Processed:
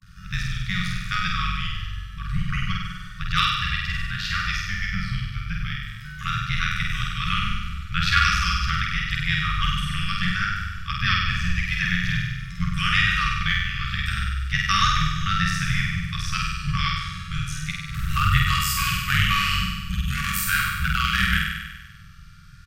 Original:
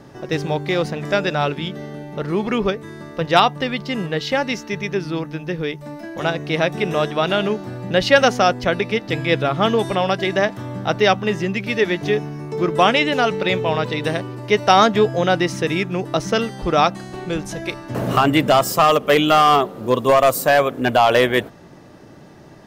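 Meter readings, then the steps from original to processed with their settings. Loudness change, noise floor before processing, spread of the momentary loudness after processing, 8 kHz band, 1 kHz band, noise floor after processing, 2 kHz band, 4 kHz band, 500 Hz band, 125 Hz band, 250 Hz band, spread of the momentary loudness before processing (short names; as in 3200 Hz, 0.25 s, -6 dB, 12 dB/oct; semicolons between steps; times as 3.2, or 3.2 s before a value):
-5.0 dB, -43 dBFS, 10 LU, -0.5 dB, -8.5 dB, -40 dBFS, -0.5 dB, -1.0 dB, under -40 dB, +1.0 dB, -10.5 dB, 12 LU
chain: vibrato 0.35 Hz 65 cents; AM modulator 92 Hz, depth 70%; flutter echo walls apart 8.4 m, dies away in 1.2 s; frequency shift -190 Hz; brick-wall FIR band-stop 190–1100 Hz; doubler 47 ms -11 dB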